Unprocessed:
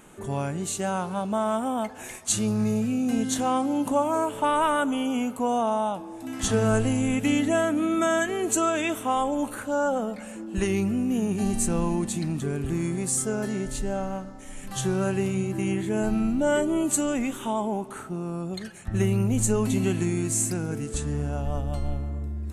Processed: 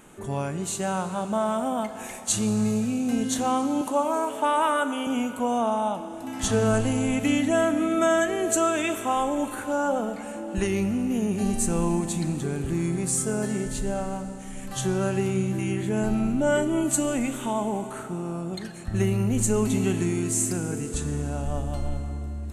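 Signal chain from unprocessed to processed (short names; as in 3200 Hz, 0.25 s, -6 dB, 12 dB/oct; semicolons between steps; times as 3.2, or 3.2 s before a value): 3.81–5.07 HPF 290 Hz 12 dB/oct; Schroeder reverb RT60 3.7 s, combs from 26 ms, DRR 10 dB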